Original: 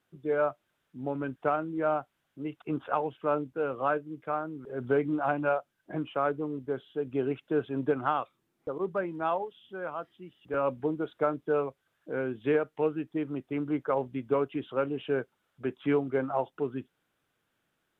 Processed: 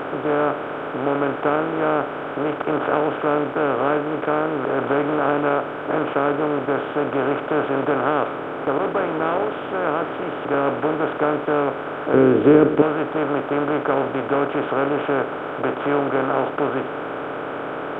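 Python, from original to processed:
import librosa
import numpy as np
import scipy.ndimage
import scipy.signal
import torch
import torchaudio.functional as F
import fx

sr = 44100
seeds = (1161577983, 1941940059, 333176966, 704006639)

y = fx.bin_compress(x, sr, power=0.2)
y = fx.low_shelf_res(y, sr, hz=520.0, db=9.0, q=1.5, at=(12.14, 12.82))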